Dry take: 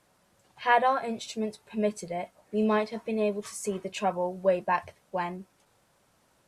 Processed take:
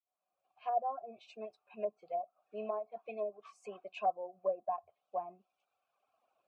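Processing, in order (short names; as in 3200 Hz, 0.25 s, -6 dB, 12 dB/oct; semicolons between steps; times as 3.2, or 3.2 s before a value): opening faded in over 1.33 s; vowel filter a; treble ducked by the level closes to 660 Hz, closed at -34 dBFS; reverb removal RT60 1.2 s; gain +3 dB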